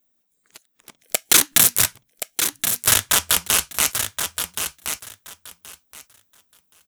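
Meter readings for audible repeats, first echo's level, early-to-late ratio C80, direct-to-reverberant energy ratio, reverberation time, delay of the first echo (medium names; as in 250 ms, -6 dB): 2, -7.5 dB, no reverb, no reverb, no reverb, 1074 ms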